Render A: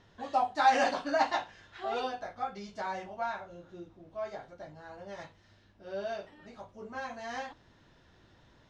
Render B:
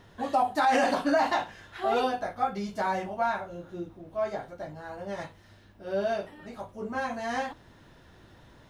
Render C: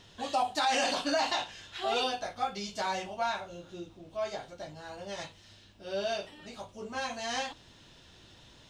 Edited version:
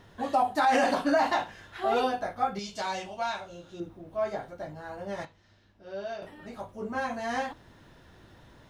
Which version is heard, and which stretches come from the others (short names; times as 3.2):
B
2.59–3.8 from C
5.25–6.22 from A